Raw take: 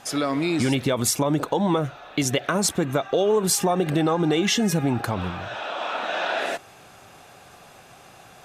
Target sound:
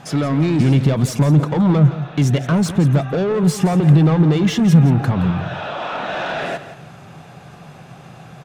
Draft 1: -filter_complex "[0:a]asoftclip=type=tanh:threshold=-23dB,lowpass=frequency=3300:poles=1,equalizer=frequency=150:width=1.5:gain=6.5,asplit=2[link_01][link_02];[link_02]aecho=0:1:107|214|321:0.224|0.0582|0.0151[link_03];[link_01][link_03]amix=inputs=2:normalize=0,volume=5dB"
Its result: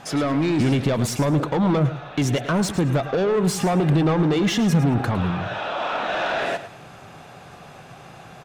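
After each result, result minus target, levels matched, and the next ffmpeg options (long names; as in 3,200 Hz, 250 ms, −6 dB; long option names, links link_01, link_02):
echo 63 ms early; 125 Hz band −3.0 dB
-filter_complex "[0:a]asoftclip=type=tanh:threshold=-23dB,lowpass=frequency=3300:poles=1,equalizer=frequency=150:width=1.5:gain=6.5,asplit=2[link_01][link_02];[link_02]aecho=0:1:170|340|510:0.224|0.0582|0.0151[link_03];[link_01][link_03]amix=inputs=2:normalize=0,volume=5dB"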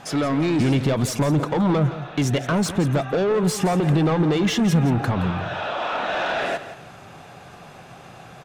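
125 Hz band −3.0 dB
-filter_complex "[0:a]asoftclip=type=tanh:threshold=-23dB,lowpass=frequency=3300:poles=1,equalizer=frequency=150:width=1.5:gain=16,asplit=2[link_01][link_02];[link_02]aecho=0:1:170|340|510:0.224|0.0582|0.0151[link_03];[link_01][link_03]amix=inputs=2:normalize=0,volume=5dB"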